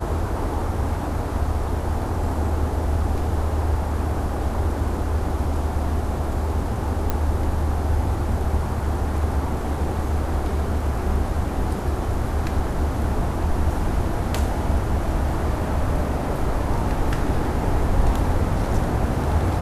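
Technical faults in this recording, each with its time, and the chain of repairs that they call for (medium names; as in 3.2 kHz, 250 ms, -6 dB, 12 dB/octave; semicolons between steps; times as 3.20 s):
7.10 s: pop -9 dBFS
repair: de-click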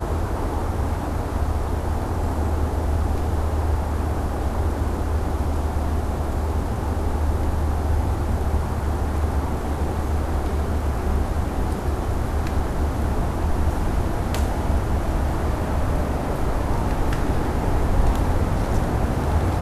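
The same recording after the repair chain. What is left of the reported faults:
nothing left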